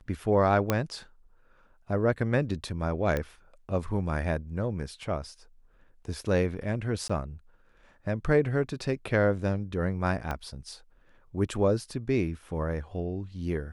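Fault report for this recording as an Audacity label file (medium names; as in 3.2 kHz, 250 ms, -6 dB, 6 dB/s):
0.700000	0.700000	pop -10 dBFS
3.170000	3.170000	pop -16 dBFS
7.080000	7.090000	dropout 15 ms
10.310000	10.310000	pop -18 dBFS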